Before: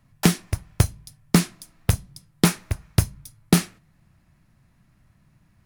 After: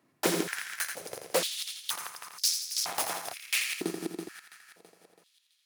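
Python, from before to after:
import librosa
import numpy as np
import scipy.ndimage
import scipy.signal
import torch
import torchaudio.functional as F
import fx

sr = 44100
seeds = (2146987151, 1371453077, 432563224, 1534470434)

p1 = fx.reverse_delay_fb(x, sr, ms=165, feedback_pct=69, wet_db=-12.5)
p2 = fx.leveller(p1, sr, passes=2, at=(2.72, 3.19))
p3 = 10.0 ** (-16.5 / 20.0) * (np.abs((p2 / 10.0 ** (-16.5 / 20.0) + 3.0) % 4.0 - 2.0) - 1.0)
p4 = p3 + fx.echo_feedback(p3, sr, ms=84, feedback_pct=52, wet_db=-7.0, dry=0)
p5 = fx.filter_held_highpass(p4, sr, hz=2.1, low_hz=340.0, high_hz=5100.0)
y = F.gain(torch.from_numpy(p5), -4.0).numpy()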